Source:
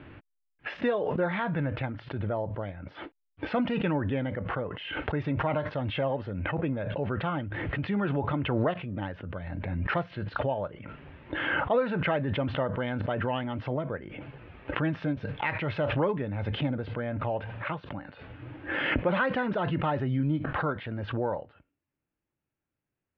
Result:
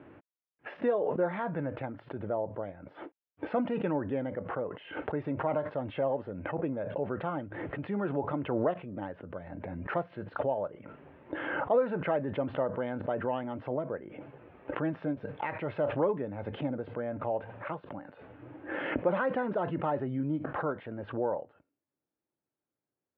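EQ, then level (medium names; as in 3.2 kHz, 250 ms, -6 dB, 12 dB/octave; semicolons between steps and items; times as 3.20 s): band-pass filter 510 Hz, Q 0.71; 0.0 dB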